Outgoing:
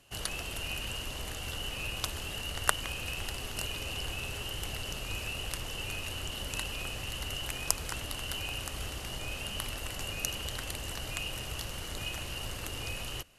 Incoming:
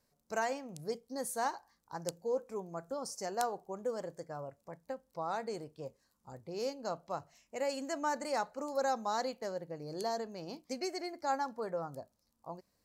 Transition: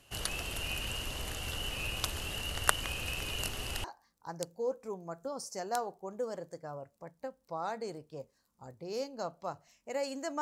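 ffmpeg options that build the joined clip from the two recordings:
-filter_complex "[0:a]apad=whole_dur=10.41,atrim=end=10.41,asplit=2[a][b];[a]atrim=end=3.212[c];[b]atrim=start=3.208:end=3.842,asetpts=PTS-STARTPTS,areverse[d];[1:a]atrim=start=1.498:end=8.07[e];[c][d]acrossfade=d=0.004:c1=hsin:c2=hsin[f];[f][e]acrossfade=d=0.004:c1=hsin:c2=hsin"

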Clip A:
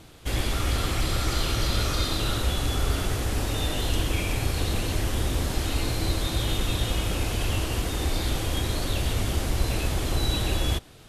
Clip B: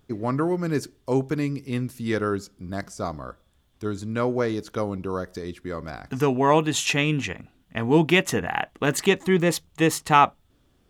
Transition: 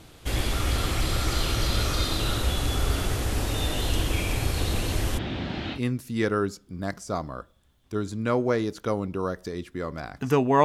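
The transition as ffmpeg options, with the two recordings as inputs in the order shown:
-filter_complex "[0:a]asplit=3[a][b][c];[a]afade=t=out:st=5.17:d=0.02[d];[b]highpass=120,equalizer=f=200:t=q:w=4:g=7,equalizer=f=470:t=q:w=4:g=-7,equalizer=f=1.1k:t=q:w=4:g=-6,lowpass=f=3.7k:w=0.5412,lowpass=f=3.7k:w=1.3066,afade=t=in:st=5.17:d=0.02,afade=t=out:st=5.8:d=0.02[e];[c]afade=t=in:st=5.8:d=0.02[f];[d][e][f]amix=inputs=3:normalize=0,apad=whole_dur=10.64,atrim=end=10.64,atrim=end=5.8,asetpts=PTS-STARTPTS[g];[1:a]atrim=start=1.62:end=6.54,asetpts=PTS-STARTPTS[h];[g][h]acrossfade=d=0.08:c1=tri:c2=tri"

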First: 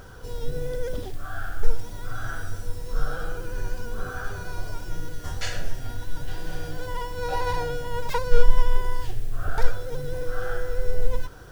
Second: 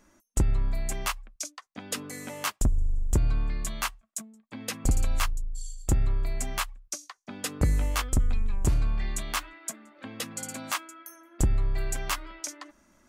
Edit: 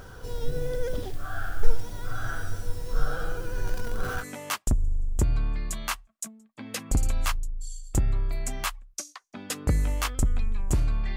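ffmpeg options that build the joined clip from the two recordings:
-filter_complex "[0:a]asettb=1/sr,asplit=3[a][b][c];[a]atrim=end=3.674[d];[b]atrim=start=3.67:end=4.25,asetpts=PTS-STARTPTS,afade=t=in:d=0.004:c=qsin,afade=t=out:st=0.576:d=0.004:c=qsin,aeval=exprs='val(0)+0.5*0.0188*sgn(val(0))':c=same[e];[c]atrim=start=4.246[f];[d][e]acrossfade=d=0.004:c1=hsin:c2=qsin[g];[g][f]acrossfade=d=0.004:c1=qsin:c2=hsin,apad=whole_dur=11.16,atrim=end=11.16,atrim=end=4.25,asetpts=PTS-STARTPTS[h];[1:a]atrim=start=2.13:end=9.1,asetpts=PTS-STARTPTS[i];[h][i]acrossfade=d=0.06:c1=tri:c2=tri"

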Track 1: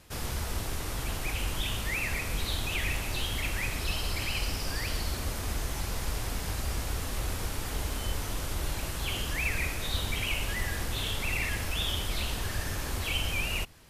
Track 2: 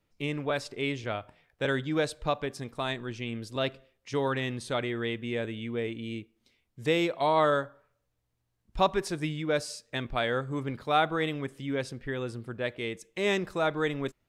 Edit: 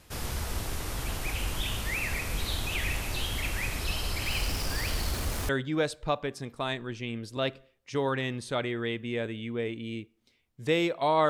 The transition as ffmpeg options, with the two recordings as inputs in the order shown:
-filter_complex "[0:a]asettb=1/sr,asplit=3[a][b][c];[a]atrim=end=4.264[d];[b]atrim=start=4.26:end=5.49,asetpts=PTS-STARTPTS,afade=t=in:d=0.004:c=qsin,afade=t=out:st=1.226:d=0.004:c=qsin,aeval=exprs='val(0)+0.5*0.0119*sgn(val(0))':c=same[e];[c]atrim=start=5.486[f];[d][e]acrossfade=d=0.004:c1=hsin:c2=qsin[g];[g][f]acrossfade=d=0.004:c1=qsin:c2=hsin,apad=whole_dur=11.29,atrim=end=11.29,atrim=end=5.492[h];[1:a]atrim=start=1.678:end=7.48[i];[h][i]acrossfade=d=0.004:c1=hsin:c2=hsin"

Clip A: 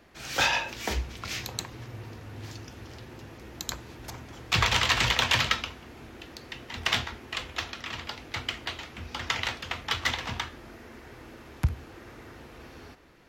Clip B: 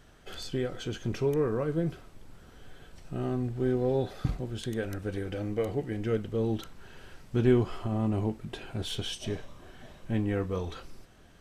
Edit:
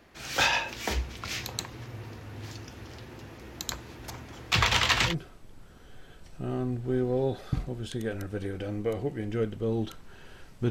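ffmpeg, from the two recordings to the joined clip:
-filter_complex "[0:a]apad=whole_dur=10.7,atrim=end=10.7,atrim=end=5.15,asetpts=PTS-STARTPTS[a];[1:a]atrim=start=1.77:end=7.42,asetpts=PTS-STARTPTS[b];[a][b]acrossfade=d=0.1:c1=tri:c2=tri"

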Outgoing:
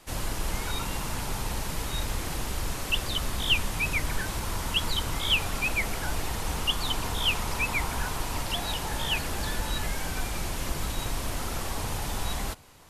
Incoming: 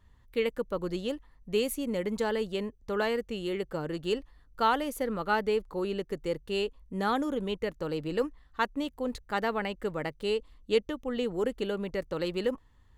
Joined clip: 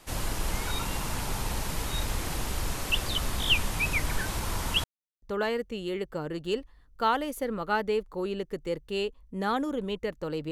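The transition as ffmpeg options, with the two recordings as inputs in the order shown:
-filter_complex "[0:a]apad=whole_dur=10.51,atrim=end=10.51,asplit=2[a][b];[a]atrim=end=4.84,asetpts=PTS-STARTPTS,afade=t=out:st=4.836:d=0.004:c=hsin[c];[b]atrim=start=4.84:end=5.22,asetpts=PTS-STARTPTS,volume=0[d];[1:a]atrim=start=2.81:end=8.1,asetpts=PTS-STARTPTS,afade=t=in:d=0.004:c=hsin[e];[c][d][e]concat=n=3:v=0:a=1"

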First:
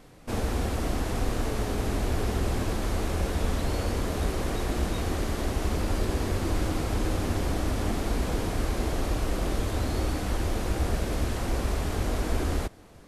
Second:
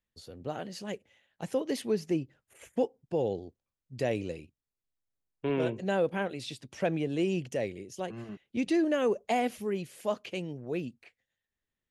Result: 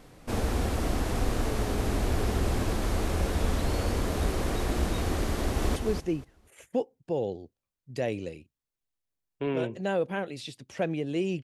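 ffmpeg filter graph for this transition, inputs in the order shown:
-filter_complex "[0:a]apad=whole_dur=11.43,atrim=end=11.43,atrim=end=5.762[a];[1:a]atrim=start=1.788:end=7.46[b];[a][b]acrossfade=d=0.004:c1=hsin:c2=hsin,asplit=2[c][d];[d]afade=t=in:st=5.32:d=0.01,afade=t=out:st=5.76:d=0.01,aecho=0:1:240|480|720:0.501187|0.100237|0.0200475[e];[c][e]amix=inputs=2:normalize=0"

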